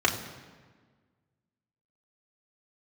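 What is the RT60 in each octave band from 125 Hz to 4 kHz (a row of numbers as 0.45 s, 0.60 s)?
1.8 s, 1.9 s, 1.6 s, 1.4 s, 1.4 s, 1.1 s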